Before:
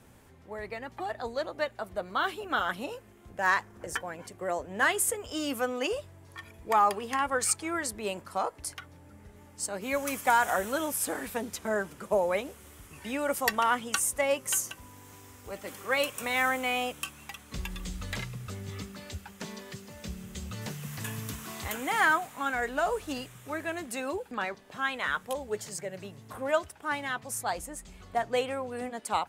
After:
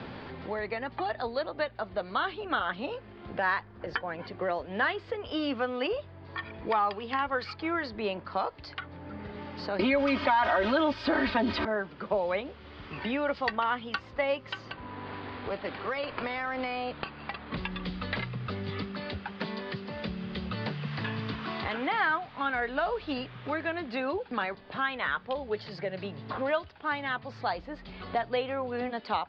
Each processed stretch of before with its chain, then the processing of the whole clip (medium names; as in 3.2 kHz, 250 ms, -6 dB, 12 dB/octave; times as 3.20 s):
9.79–11.65 s: comb 3.2 ms, depth 90% + level flattener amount 70%
14.71–17.57 s: compression, threshold -31 dBFS + decimation joined by straight lines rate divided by 6×
whole clip: Chebyshev low-pass 4.7 kHz, order 6; three bands compressed up and down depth 70%